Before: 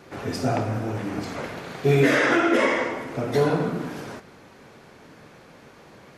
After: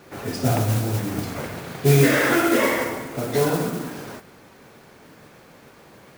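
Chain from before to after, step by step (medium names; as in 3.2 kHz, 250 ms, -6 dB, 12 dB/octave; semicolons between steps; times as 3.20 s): 0.43–3.06 s: peaking EQ 96 Hz +7.5 dB 1.8 oct; modulation noise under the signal 13 dB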